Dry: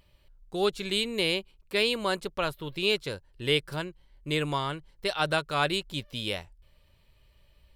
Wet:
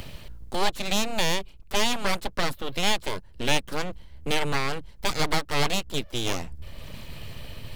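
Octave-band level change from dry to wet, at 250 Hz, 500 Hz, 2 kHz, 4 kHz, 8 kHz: +2.0, −1.5, +2.0, +1.5, +11.0 decibels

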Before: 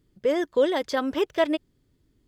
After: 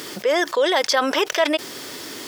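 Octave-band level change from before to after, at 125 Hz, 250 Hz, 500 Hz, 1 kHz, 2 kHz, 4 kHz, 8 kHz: can't be measured, +0.5 dB, +3.0 dB, +8.5 dB, +10.5 dB, +13.0 dB, +18.0 dB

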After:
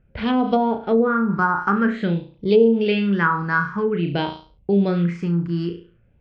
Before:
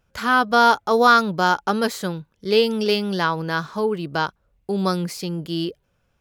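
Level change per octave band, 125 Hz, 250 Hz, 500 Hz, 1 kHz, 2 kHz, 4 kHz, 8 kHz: +5.5 dB, +5.0 dB, +1.5 dB, −4.5 dB, −1.5 dB, −8.5 dB, below −20 dB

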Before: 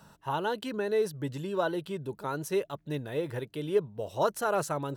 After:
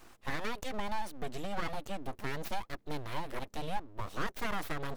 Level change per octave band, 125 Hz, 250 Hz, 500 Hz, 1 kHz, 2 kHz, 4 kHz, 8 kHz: −6.0, −7.0, −13.0, −4.5, −1.0, −1.5, −7.0 decibels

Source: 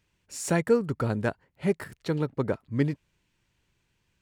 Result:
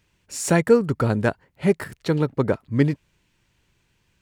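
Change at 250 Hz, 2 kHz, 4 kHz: +6.5, +6.5, +6.5 decibels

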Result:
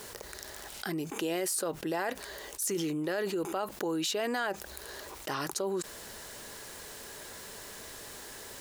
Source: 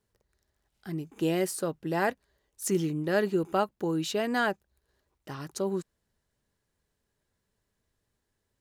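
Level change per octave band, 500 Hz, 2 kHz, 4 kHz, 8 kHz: −3.5, −2.5, +3.0, +4.5 decibels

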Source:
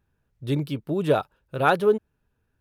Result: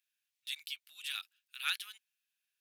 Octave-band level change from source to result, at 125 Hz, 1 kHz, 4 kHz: below −40 dB, −25.0 dB, +1.5 dB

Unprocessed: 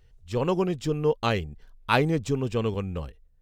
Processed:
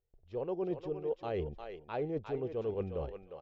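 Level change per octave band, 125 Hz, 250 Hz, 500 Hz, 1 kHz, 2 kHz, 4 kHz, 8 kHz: −15.0 dB, −12.0 dB, −8.0 dB, −14.5 dB, −21.0 dB, −22.0 dB, below −30 dB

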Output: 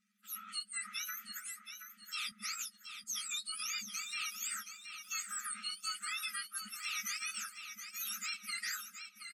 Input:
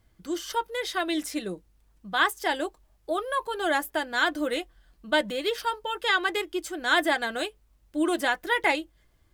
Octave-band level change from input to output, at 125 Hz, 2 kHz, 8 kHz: can't be measured, −15.5 dB, +3.0 dB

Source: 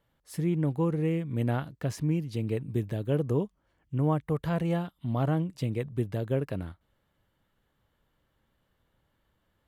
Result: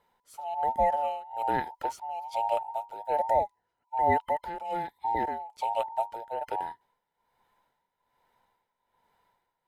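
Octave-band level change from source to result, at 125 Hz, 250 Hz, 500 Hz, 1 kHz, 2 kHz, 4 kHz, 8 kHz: −21.0 dB, −14.5 dB, 0.0 dB, +14.5 dB, +2.5 dB, −1.0 dB, can't be measured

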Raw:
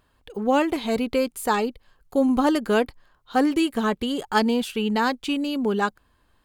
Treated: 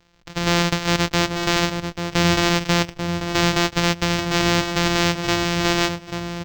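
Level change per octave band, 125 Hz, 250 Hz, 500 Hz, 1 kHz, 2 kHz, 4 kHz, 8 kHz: can't be measured, 0.0 dB, 0.0 dB, +1.5 dB, +8.0 dB, +11.0 dB, +12.5 dB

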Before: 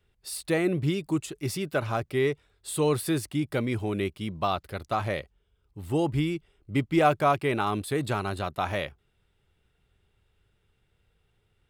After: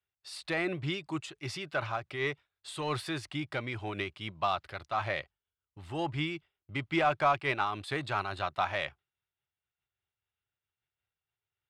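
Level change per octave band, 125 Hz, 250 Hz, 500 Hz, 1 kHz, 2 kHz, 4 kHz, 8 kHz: −9.0, −9.5, −8.0, −3.0, 0.0, −1.0, −12.0 decibels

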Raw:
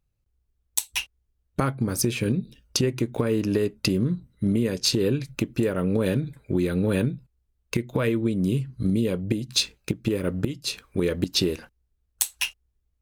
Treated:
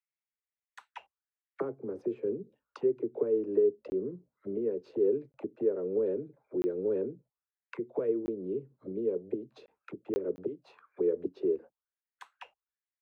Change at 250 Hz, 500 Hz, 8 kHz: −11.5 dB, −2.0 dB, below −35 dB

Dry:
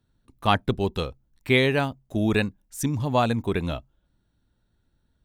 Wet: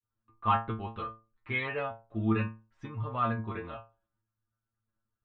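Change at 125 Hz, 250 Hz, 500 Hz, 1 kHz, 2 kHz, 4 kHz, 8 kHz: −8.0 dB, −9.5 dB, −12.5 dB, −4.0 dB, −9.0 dB, −17.5 dB, below −35 dB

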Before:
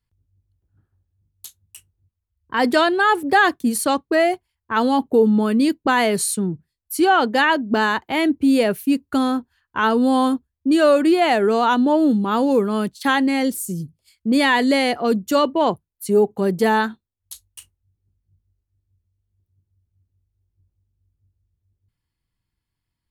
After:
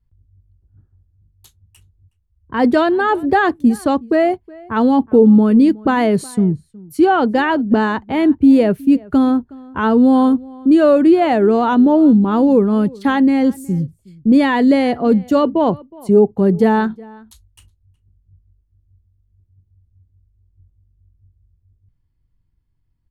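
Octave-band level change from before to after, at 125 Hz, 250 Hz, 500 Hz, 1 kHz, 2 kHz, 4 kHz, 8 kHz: +8.5 dB, +7.0 dB, +3.5 dB, +0.5 dB, −2.5 dB, −6.0 dB, below −10 dB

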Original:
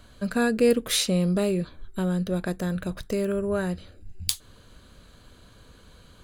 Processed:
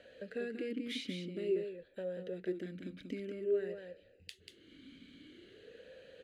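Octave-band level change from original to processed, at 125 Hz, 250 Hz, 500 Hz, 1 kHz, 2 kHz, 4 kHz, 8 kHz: −21.0 dB, −16.0 dB, −10.5 dB, below −25 dB, −15.0 dB, −16.5 dB, below −25 dB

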